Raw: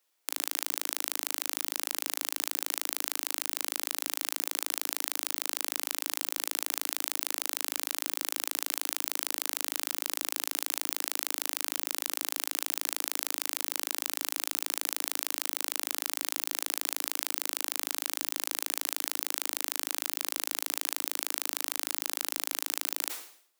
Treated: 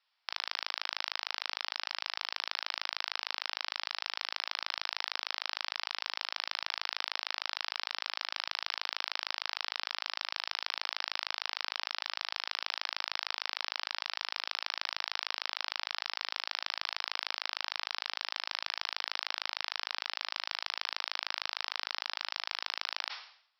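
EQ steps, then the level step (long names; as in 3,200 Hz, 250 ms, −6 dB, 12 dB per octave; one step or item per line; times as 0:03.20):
high-pass filter 770 Hz 24 dB per octave
Chebyshev low-pass filter 5,400 Hz, order 8
+2.5 dB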